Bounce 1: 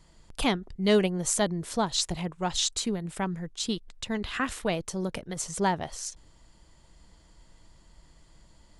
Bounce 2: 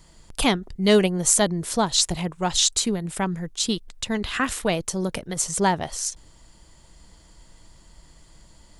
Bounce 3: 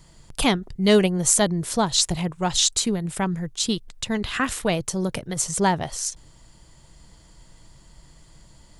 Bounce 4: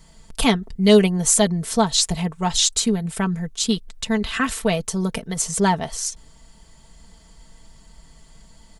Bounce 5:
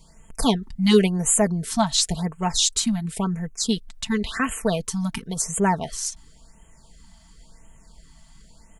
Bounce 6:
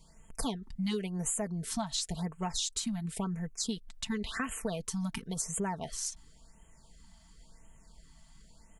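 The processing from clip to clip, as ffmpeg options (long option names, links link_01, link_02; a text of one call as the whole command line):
ffmpeg -i in.wav -af "highshelf=frequency=6800:gain=7.5,volume=5dB" out.wav
ffmpeg -i in.wav -af "equalizer=frequency=130:width=2.7:gain=7" out.wav
ffmpeg -i in.wav -af "aecho=1:1:4.5:0.65" out.wav
ffmpeg -i in.wav -af "afftfilt=real='re*(1-between(b*sr/1024,400*pow(4700/400,0.5+0.5*sin(2*PI*0.94*pts/sr))/1.41,400*pow(4700/400,0.5+0.5*sin(2*PI*0.94*pts/sr))*1.41))':imag='im*(1-between(b*sr/1024,400*pow(4700/400,0.5+0.5*sin(2*PI*0.94*pts/sr))/1.41,400*pow(4700/400,0.5+0.5*sin(2*PI*0.94*pts/sr))*1.41))':win_size=1024:overlap=0.75,volume=-2dB" out.wav
ffmpeg -i in.wav -af "acompressor=threshold=-23dB:ratio=10,volume=-7dB" out.wav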